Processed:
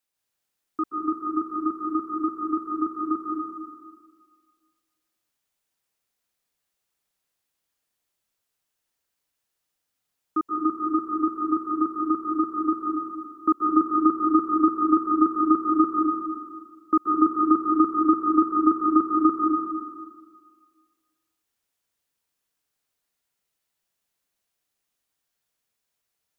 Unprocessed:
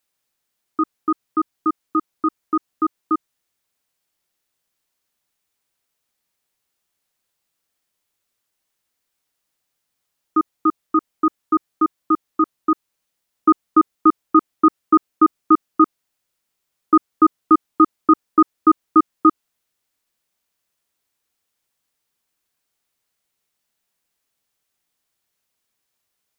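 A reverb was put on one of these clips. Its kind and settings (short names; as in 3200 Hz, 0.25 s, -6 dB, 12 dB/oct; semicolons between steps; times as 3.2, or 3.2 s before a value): plate-style reverb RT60 1.7 s, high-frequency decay 0.8×, pre-delay 0.12 s, DRR -1.5 dB; gain -7.5 dB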